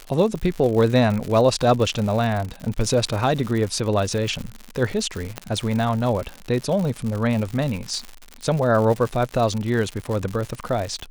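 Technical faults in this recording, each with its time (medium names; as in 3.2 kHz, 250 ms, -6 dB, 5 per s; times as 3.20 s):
crackle 130 per s -26 dBFS
5.38 s: pop -13 dBFS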